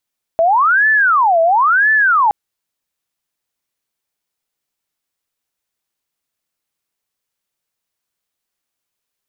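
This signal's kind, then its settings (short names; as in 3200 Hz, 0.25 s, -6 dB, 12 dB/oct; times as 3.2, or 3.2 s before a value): siren wail 655–1750 Hz 0.98/s sine -9 dBFS 1.92 s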